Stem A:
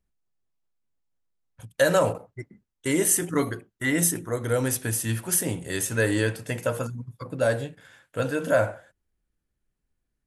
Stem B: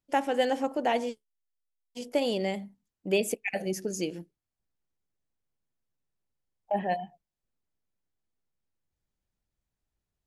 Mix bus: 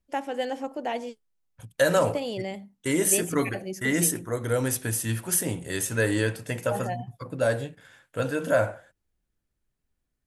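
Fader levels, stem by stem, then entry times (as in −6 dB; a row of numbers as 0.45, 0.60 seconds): −1.0, −3.5 decibels; 0.00, 0.00 seconds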